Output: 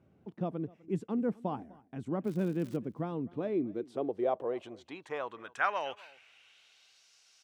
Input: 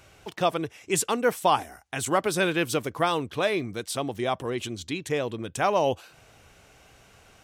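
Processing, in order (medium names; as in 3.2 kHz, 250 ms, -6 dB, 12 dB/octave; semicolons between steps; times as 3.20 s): band-pass sweep 210 Hz -> 5.1 kHz, 3.23–7.10 s; 2.24–2.76 s: crackle 180 per s -43 dBFS; delay 251 ms -23 dB; trim +2 dB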